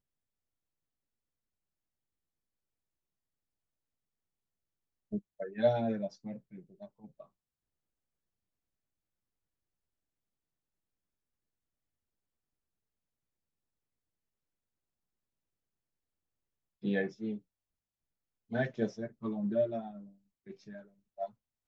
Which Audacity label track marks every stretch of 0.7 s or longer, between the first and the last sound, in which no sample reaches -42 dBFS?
7.210000	16.840000	silence
17.370000	18.520000	silence